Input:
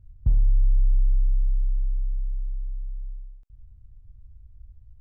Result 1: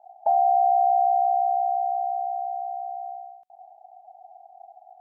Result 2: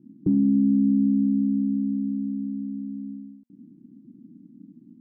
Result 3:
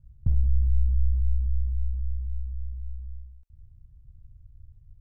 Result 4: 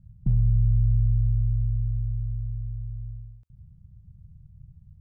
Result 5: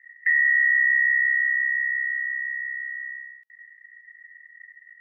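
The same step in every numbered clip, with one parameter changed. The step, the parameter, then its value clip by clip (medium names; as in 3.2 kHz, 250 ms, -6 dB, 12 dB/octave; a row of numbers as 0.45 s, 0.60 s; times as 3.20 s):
ring modulator, frequency: 740 Hz, 240 Hz, 31 Hz, 80 Hz, 1.9 kHz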